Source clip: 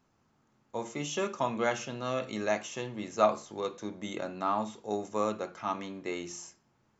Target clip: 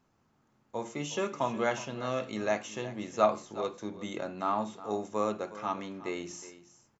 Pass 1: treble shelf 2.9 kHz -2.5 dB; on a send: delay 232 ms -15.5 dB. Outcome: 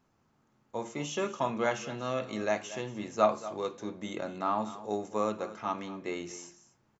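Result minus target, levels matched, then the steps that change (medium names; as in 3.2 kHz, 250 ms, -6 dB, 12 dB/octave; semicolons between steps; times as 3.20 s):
echo 132 ms early
change: delay 364 ms -15.5 dB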